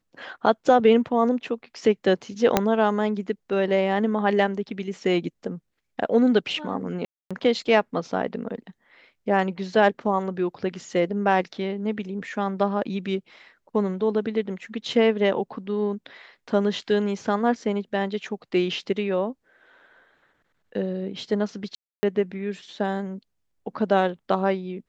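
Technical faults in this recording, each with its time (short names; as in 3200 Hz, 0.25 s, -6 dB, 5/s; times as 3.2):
2.57 pop -3 dBFS
7.05–7.31 gap 0.256 s
21.75–22.03 gap 0.28 s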